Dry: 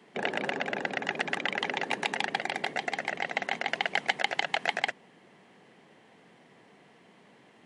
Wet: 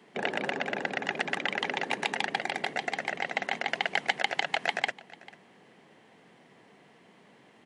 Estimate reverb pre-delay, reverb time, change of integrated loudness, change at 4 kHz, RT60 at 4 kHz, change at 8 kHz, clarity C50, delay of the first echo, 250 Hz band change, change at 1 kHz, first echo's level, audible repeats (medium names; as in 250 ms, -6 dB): no reverb, no reverb, 0.0 dB, 0.0 dB, no reverb, 0.0 dB, no reverb, 444 ms, 0.0 dB, 0.0 dB, -21.0 dB, 1